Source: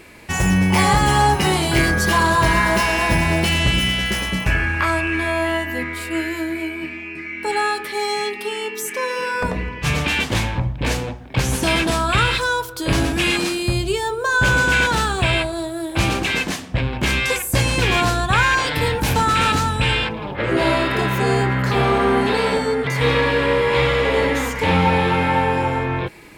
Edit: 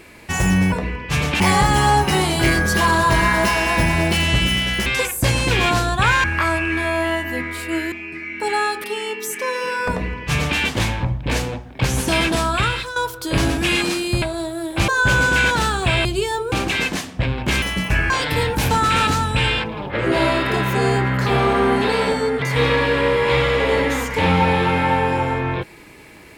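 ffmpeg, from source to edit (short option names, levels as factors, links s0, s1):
-filter_complex "[0:a]asplit=14[s0][s1][s2][s3][s4][s5][s6][s7][s8][s9][s10][s11][s12][s13];[s0]atrim=end=0.722[s14];[s1]atrim=start=9.448:end=10.132[s15];[s2]atrim=start=0.718:end=4.182[s16];[s3]atrim=start=17.168:end=18.552[s17];[s4]atrim=start=4.658:end=6.342[s18];[s5]atrim=start=6.948:end=7.872[s19];[s6]atrim=start=8.388:end=12.51,asetpts=PTS-STARTPTS,afade=t=out:st=3.642:d=0.48:silence=0.251189[s20];[s7]atrim=start=12.51:end=13.772,asetpts=PTS-STARTPTS,afade=t=in:d=0.004:c=hsin:silence=0.251189[s21];[s8]atrim=start=15.408:end=16.072[s22];[s9]atrim=start=14.238:end=15.412[s23];[s10]atrim=start=13.768:end=14.242[s24];[s11]atrim=start=16.068:end=17.172[s25];[s12]atrim=start=4.178:end=4.662[s26];[s13]atrim=start=18.548[s27];[s14][s15]acrossfade=d=0.004:c1=hsin:c2=hsin[s28];[s28][s16]acrossfade=d=0.004:c1=hsin:c2=hsin[s29];[s29][s17]acrossfade=d=0.004:c1=hsin:c2=hsin[s30];[s30][s18]acrossfade=d=0.004:c1=hsin:c2=hsin[s31];[s31][s19]acrossfade=d=0.004:c1=hsin:c2=hsin[s32];[s20][s21]concat=n=2:v=0:a=1[s33];[s32][s33]acrossfade=d=0.004:c1=hsin:c2=hsin[s34];[s34][s22]acrossfade=d=0.004:c1=hsin:c2=hsin[s35];[s35][s23]acrossfade=d=0.004:c1=hsin:c2=hsin[s36];[s36][s24]acrossfade=d=0.004:c1=hsin:c2=hsin[s37];[s37][s25]acrossfade=d=0.004:c1=hsin:c2=hsin[s38];[s38][s26]acrossfade=d=0.004:c1=hsin:c2=hsin[s39];[s39][s27]acrossfade=d=0.004:c1=hsin:c2=hsin"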